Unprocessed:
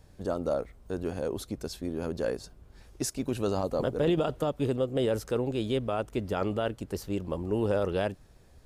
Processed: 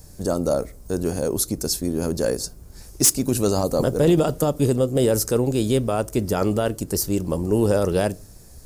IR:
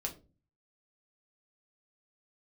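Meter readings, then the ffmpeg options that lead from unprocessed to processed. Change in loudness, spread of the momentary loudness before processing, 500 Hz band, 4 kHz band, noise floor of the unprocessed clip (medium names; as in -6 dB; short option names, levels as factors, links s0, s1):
+9.0 dB, 8 LU, +8.0 dB, +10.5 dB, -56 dBFS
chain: -filter_complex "[0:a]lowshelf=f=430:g=5.5,aexciter=amount=5.8:drive=5:freq=4700,asoftclip=type=hard:threshold=0.168,asplit=2[s0][s1];[1:a]atrim=start_sample=2205[s2];[s1][s2]afir=irnorm=-1:irlink=0,volume=0.2[s3];[s0][s3]amix=inputs=2:normalize=0,volume=1.58"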